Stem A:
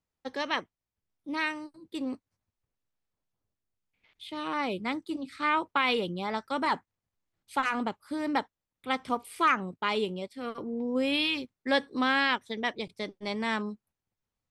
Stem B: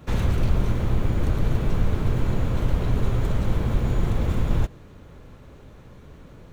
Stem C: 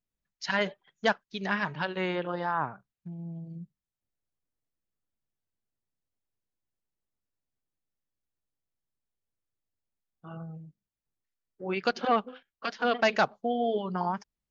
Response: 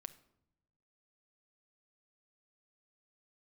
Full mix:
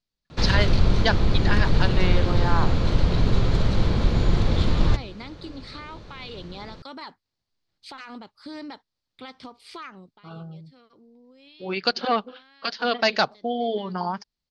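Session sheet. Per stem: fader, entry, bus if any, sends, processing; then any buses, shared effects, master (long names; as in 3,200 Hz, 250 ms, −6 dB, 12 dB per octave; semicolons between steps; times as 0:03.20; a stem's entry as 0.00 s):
+1.0 dB, 0.35 s, no send, downward compressor 6 to 1, threshold −36 dBFS, peak gain reduction 15.5 dB; brickwall limiter −31.5 dBFS, peak gain reduction 8 dB; automatic ducking −16 dB, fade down 0.25 s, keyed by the third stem
+1.0 dB, 0.30 s, send −8 dB, mains-hum notches 60/120 Hz
+2.0 dB, 0.00 s, no send, no processing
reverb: on, pre-delay 6 ms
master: low-pass filter 5,800 Hz 12 dB per octave; parametric band 4,500 Hz +13.5 dB 0.71 octaves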